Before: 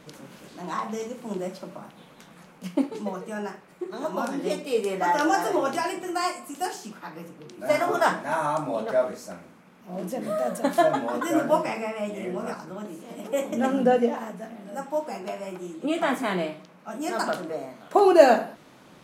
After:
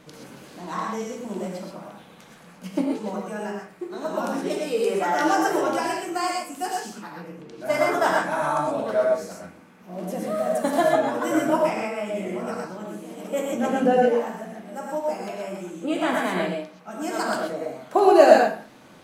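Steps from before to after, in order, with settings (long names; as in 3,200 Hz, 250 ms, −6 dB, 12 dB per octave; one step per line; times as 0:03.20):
0:07.17–0:07.64: low-pass filter 2,500 Hz → 6,100 Hz 6 dB per octave
reverb whose tail is shaped and stops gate 150 ms rising, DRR −0.5 dB
level −1 dB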